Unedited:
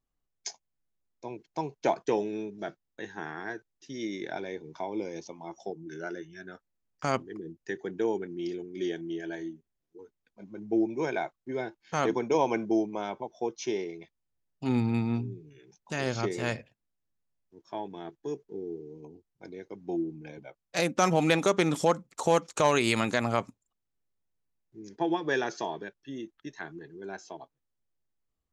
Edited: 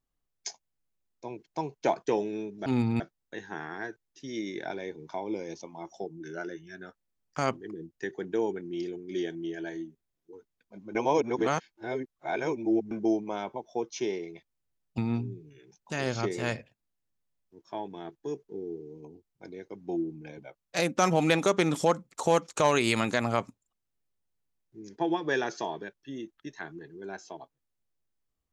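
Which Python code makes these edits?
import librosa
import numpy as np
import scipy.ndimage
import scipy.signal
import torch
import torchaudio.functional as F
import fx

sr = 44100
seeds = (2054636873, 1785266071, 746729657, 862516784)

y = fx.edit(x, sr, fx.reverse_span(start_s=10.61, length_s=1.96),
    fx.move(start_s=14.64, length_s=0.34, to_s=2.66), tone=tone)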